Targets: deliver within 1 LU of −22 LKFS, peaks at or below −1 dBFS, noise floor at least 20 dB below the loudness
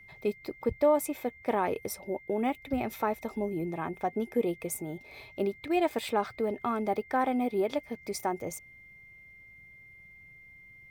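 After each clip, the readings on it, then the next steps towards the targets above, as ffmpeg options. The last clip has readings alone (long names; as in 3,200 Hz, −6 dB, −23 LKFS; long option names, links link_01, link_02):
interfering tone 2,100 Hz; level of the tone −51 dBFS; integrated loudness −31.5 LKFS; sample peak −14.0 dBFS; target loudness −22.0 LKFS
→ -af "bandreject=frequency=2100:width=30"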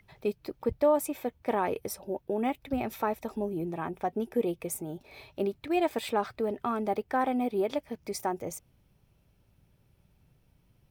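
interfering tone none found; integrated loudness −31.5 LKFS; sample peak −14.0 dBFS; target loudness −22.0 LKFS
→ -af "volume=9.5dB"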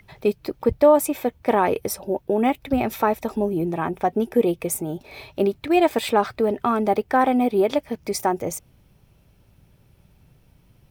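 integrated loudness −22.0 LKFS; sample peak −4.5 dBFS; background noise floor −58 dBFS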